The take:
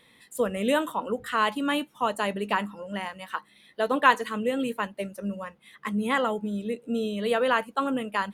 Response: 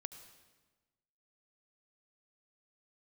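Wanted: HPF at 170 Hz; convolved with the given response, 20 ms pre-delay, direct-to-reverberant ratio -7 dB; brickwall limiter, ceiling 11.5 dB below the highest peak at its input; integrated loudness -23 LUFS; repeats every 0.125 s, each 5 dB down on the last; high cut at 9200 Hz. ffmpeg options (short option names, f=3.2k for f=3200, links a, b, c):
-filter_complex "[0:a]highpass=170,lowpass=9.2k,alimiter=limit=-16dB:level=0:latency=1,aecho=1:1:125|250|375|500|625|750|875:0.562|0.315|0.176|0.0988|0.0553|0.031|0.0173,asplit=2[a][b];[1:a]atrim=start_sample=2205,adelay=20[c];[b][c]afir=irnorm=-1:irlink=0,volume=10.5dB[d];[a][d]amix=inputs=2:normalize=0,volume=-2.5dB"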